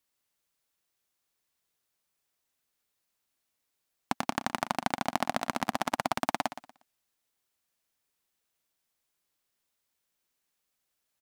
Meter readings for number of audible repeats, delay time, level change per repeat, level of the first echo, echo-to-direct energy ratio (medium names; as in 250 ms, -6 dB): 2, 119 ms, -11.5 dB, -13.0 dB, -12.5 dB